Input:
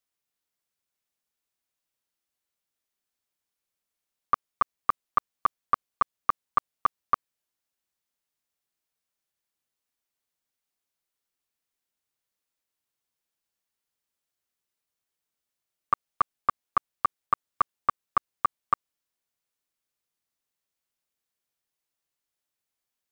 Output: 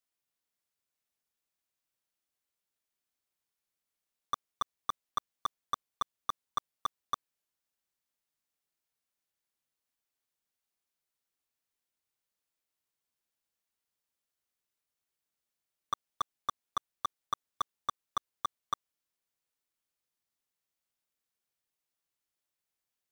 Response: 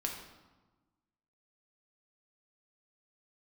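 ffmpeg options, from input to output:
-af "acrusher=bits=3:mode=log:mix=0:aa=0.000001,asoftclip=type=tanh:threshold=-22dB,volume=-2.5dB"

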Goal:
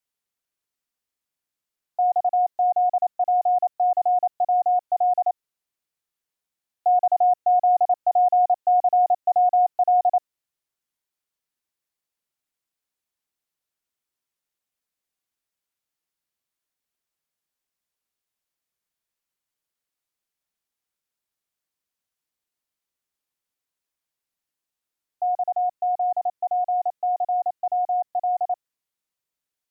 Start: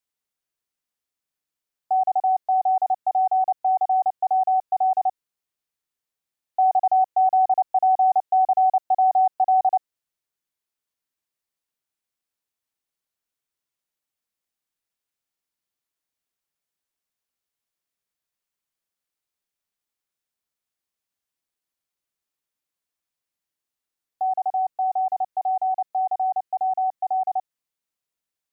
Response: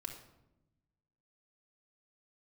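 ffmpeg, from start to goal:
-af "asetrate=42336,aresample=44100"

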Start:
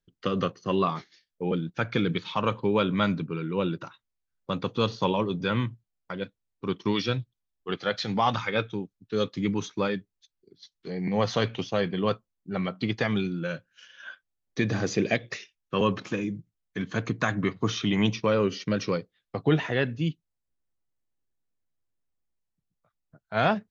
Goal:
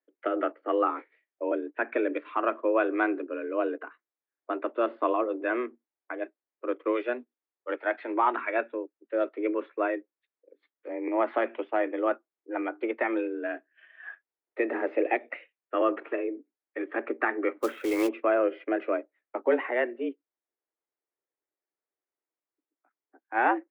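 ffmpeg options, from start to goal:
ffmpeg -i in.wav -filter_complex "[0:a]highpass=frequency=190:width_type=q:width=0.5412,highpass=frequency=190:width_type=q:width=1.307,lowpass=frequency=2200:width_type=q:width=0.5176,lowpass=frequency=2200:width_type=q:width=0.7071,lowpass=frequency=2200:width_type=q:width=1.932,afreqshift=120,asplit=3[link_01][link_02][link_03];[link_01]afade=type=out:start_time=17.61:duration=0.02[link_04];[link_02]acrusher=bits=4:mode=log:mix=0:aa=0.000001,afade=type=in:start_time=17.61:duration=0.02,afade=type=out:start_time=18.07:duration=0.02[link_05];[link_03]afade=type=in:start_time=18.07:duration=0.02[link_06];[link_04][link_05][link_06]amix=inputs=3:normalize=0" out.wav

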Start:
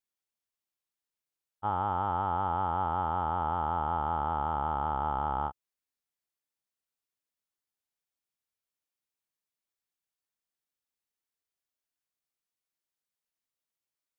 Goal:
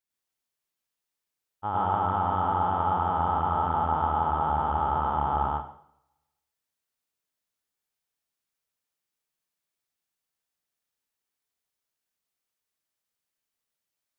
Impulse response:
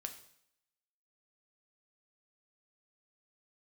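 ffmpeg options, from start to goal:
-filter_complex "[0:a]asplit=2[link_01][link_02];[1:a]atrim=start_sample=2205,adelay=102[link_03];[link_02][link_03]afir=irnorm=-1:irlink=0,volume=5.5dB[link_04];[link_01][link_04]amix=inputs=2:normalize=0"

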